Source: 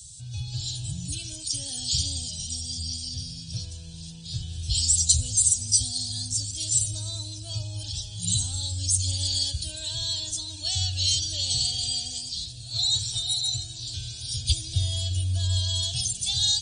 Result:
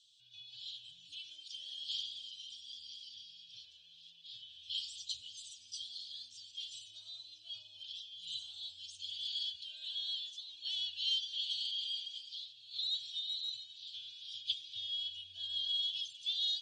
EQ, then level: band-pass 3200 Hz, Q 6; air absorption 120 m; 0.0 dB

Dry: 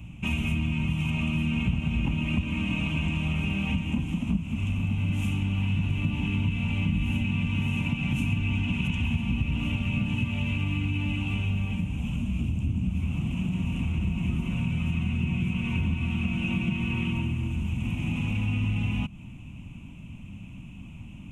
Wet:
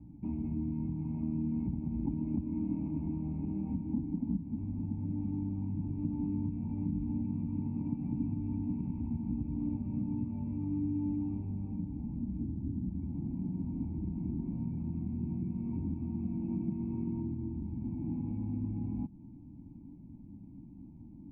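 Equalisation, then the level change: vocal tract filter u; +3.0 dB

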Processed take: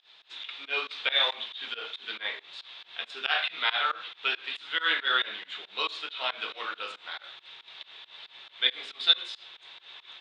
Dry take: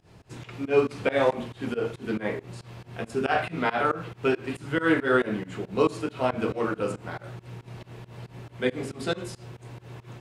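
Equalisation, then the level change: HPF 1300 Hz 12 dB/oct; synth low-pass 3600 Hz, resonance Q 9.3; 0.0 dB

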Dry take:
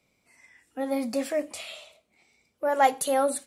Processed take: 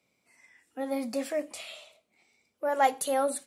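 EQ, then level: HPF 58 Hz; low shelf 80 Hz -8.5 dB; notches 50/100/150 Hz; -3.0 dB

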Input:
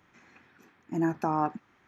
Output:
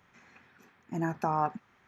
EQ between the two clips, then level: bell 310 Hz -10 dB 0.27 oct; 0.0 dB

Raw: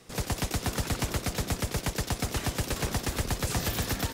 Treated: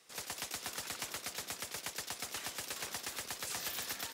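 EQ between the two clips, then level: HPF 1400 Hz 6 dB/oct; -5.5 dB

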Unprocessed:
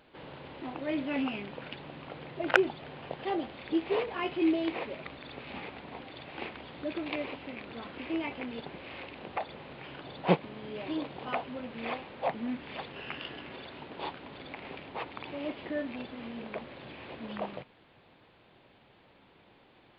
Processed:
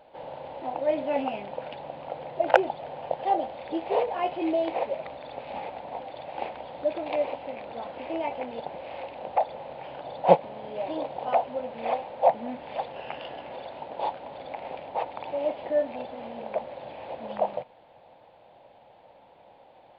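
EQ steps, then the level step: band shelf 680 Hz +14.5 dB 1.1 oct; -2.5 dB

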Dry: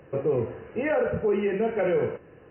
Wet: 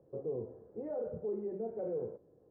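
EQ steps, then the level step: ladder low-pass 820 Hz, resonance 20%; low shelf 130 Hz -4.5 dB; -8.5 dB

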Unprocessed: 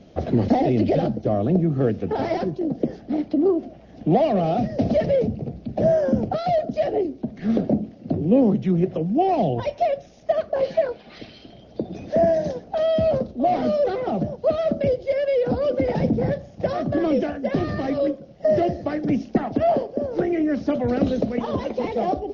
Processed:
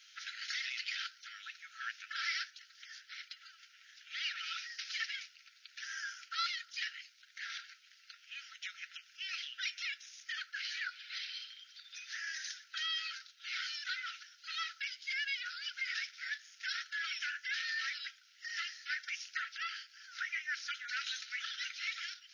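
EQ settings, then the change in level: brick-wall FIR high-pass 1300 Hz; high shelf 4700 Hz +9.5 dB; +1.0 dB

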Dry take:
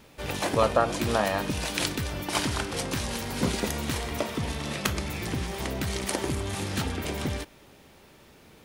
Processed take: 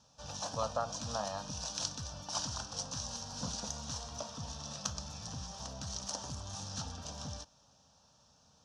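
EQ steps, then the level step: HPF 61 Hz; ladder low-pass 6300 Hz, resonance 70%; fixed phaser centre 880 Hz, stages 4; +1.5 dB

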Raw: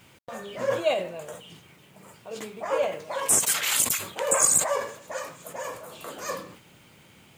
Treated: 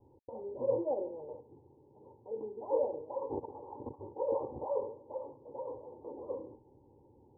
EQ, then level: steep low-pass 910 Hz 96 dB/oct; fixed phaser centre 670 Hz, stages 6; 0.0 dB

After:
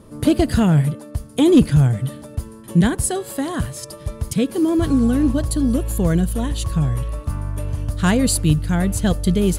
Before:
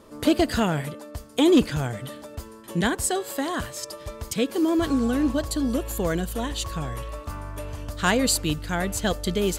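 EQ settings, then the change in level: bell 140 Hz +7.5 dB 1 oct; low shelf 260 Hz +11 dB; bell 10000 Hz +13 dB 0.21 oct; -1.0 dB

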